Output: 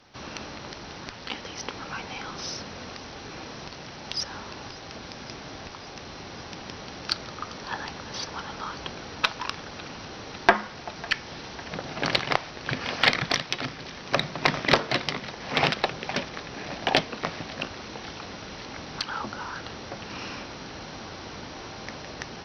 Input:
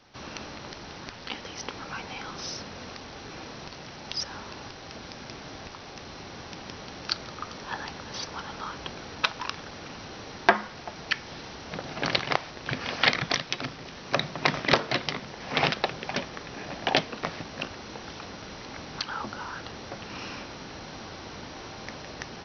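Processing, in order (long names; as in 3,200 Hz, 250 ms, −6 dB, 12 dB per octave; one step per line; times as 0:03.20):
feedback echo with a high-pass in the loop 551 ms, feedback 81%, high-pass 810 Hz, level −20 dB
harmonic generator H 4 −34 dB, 6 −39 dB, 8 −35 dB, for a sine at −2.5 dBFS
level +1.5 dB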